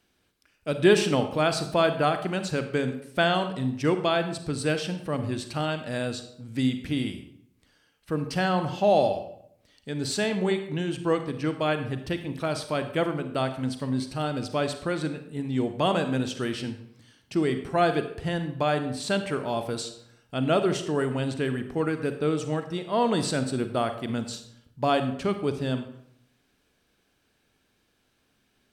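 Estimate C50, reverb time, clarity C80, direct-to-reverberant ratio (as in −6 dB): 9.5 dB, 0.70 s, 12.5 dB, 8.5 dB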